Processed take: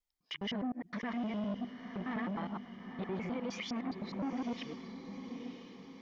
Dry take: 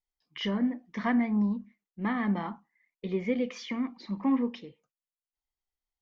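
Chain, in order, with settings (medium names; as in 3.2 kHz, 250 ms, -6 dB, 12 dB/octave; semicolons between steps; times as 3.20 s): time reversed locally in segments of 103 ms; peak limiter -28.5 dBFS, peak gain reduction 12 dB; on a send: echo that smears into a reverb 934 ms, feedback 51%, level -9 dB; on the sum: transformer saturation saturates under 480 Hz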